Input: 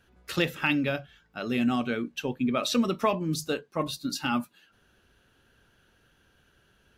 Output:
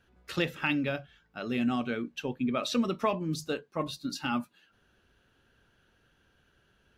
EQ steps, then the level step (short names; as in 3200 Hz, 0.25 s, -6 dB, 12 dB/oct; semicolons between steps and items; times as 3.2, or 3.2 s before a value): high shelf 8400 Hz -8.5 dB; -3.0 dB